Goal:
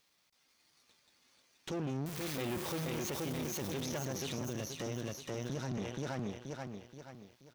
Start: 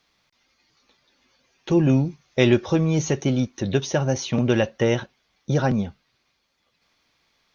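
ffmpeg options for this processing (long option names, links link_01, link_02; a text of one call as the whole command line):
ffmpeg -i in.wav -filter_complex "[0:a]asettb=1/sr,asplit=3[link_01][link_02][link_03];[link_01]atrim=end=2.064[link_04];[link_02]atrim=start=2.06:end=3.1,asetpts=PTS-STARTPTS,afade=type=in:duration=0.004:curve=qsin,afade=type=out:start_time=1.036:duration=0.004:curve=qsin,aeval=exprs='val(0)+0.5*0.1*sgn(val(0))':channel_layout=same[link_05];[link_03]atrim=start=3.096[link_06];[link_04][link_05]acrossfade=duration=0.004:curve1=hsin:curve2=qsin[link_07];[link_07][link_06]acrossfade=duration=0.004:curve1=qsin:curve2=hsin,asplit=2[link_08][link_09];[link_09]aecho=0:1:478|956|1434|1912|2390:0.596|0.232|0.0906|0.0353|0.0138[link_10];[link_08][link_10]amix=inputs=2:normalize=0,asettb=1/sr,asplit=3[link_11][link_12][link_13];[link_11]atrim=end=4.414[link_14];[link_12]atrim=start=4.41:end=5.78,asetpts=PTS-STARTPTS,afade=type=in:duration=0.004:curve=qsin,afade=type=out:start_time=1.366:duration=0.004:curve=qsin,acrossover=split=260|4200[link_15][link_16][link_17];[link_15]acompressor=threshold=-23dB:ratio=4[link_18];[link_16]acompressor=threshold=-31dB:ratio=4[link_19];[link_17]acompressor=threshold=-41dB:ratio=4[link_20];[link_18][link_19][link_20]amix=inputs=3:normalize=0[link_21];[link_13]atrim=start=5.776[link_22];[link_14][link_21]acrossfade=duration=0.004:curve1=hsin:curve2=qsin[link_23];[link_23][link_22]acrossfade=duration=0.004:curve1=qsin:curve2=hsin,aeval=exprs='(tanh(2.24*val(0)+0.8)-tanh(0.8))/2.24':channel_layout=same,acrossover=split=3800[link_24][link_25];[link_25]acompressor=threshold=-41dB:ratio=4:attack=1:release=60[link_26];[link_24][link_26]amix=inputs=2:normalize=0,aemphasis=mode=production:type=50kf,aeval=exprs='max(val(0),0)':channel_layout=same,alimiter=level_in=2.5dB:limit=-24dB:level=0:latency=1:release=16,volume=-2.5dB,highpass=frequency=96:poles=1" out.wav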